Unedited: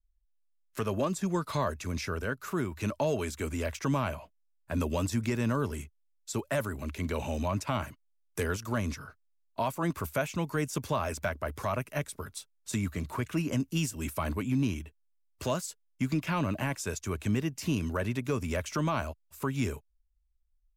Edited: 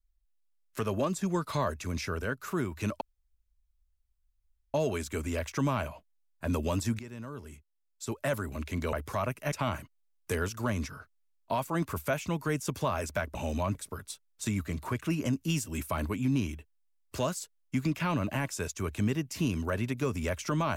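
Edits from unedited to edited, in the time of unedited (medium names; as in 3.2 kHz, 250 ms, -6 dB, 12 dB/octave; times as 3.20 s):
3.01 s: insert room tone 1.73 s
5.26–6.59 s: fade in quadratic, from -14 dB
7.20–7.60 s: swap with 11.43–12.02 s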